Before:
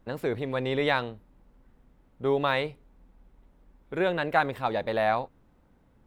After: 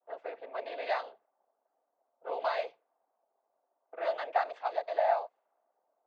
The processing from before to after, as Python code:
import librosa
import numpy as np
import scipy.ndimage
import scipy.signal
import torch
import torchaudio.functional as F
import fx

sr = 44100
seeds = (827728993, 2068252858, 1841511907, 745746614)

y = fx.noise_vocoder(x, sr, seeds[0], bands=16)
y = fx.ladder_highpass(y, sr, hz=590.0, resonance_pct=60)
y = fx.env_lowpass(y, sr, base_hz=940.0, full_db=-28.5)